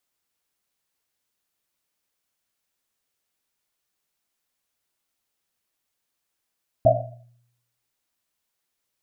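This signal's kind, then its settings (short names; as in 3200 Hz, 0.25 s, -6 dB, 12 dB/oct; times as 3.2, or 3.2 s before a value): Risset drum, pitch 120 Hz, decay 0.83 s, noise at 650 Hz, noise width 130 Hz, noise 70%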